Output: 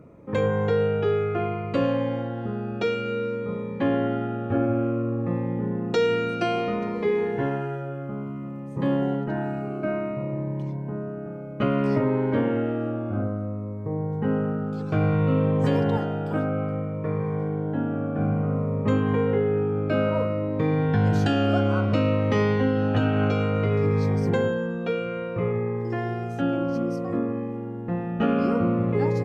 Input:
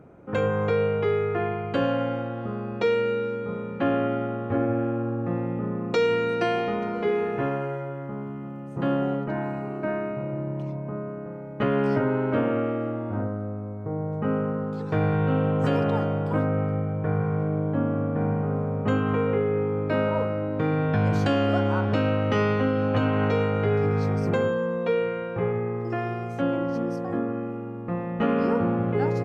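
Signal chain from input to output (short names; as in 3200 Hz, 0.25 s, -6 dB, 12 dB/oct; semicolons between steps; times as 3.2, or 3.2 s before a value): 15.97–18.19 HPF 190 Hz 6 dB/oct; cascading phaser falling 0.59 Hz; gain +2 dB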